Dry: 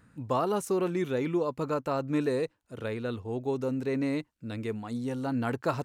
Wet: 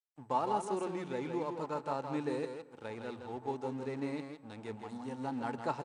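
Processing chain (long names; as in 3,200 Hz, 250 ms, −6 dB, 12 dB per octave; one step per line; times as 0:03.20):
single-tap delay 162 ms −6 dB
dead-zone distortion −44 dBFS
high-pass filter 110 Hz
parametric band 860 Hz +14 dB 0.21 octaves
mains-hum notches 60/120/180 Hz
on a send at −17 dB: high-shelf EQ 6,100 Hz −10 dB + convolution reverb RT60 0.90 s, pre-delay 102 ms
on the sum: level −8 dB
MP2 192 kbit/s 32,000 Hz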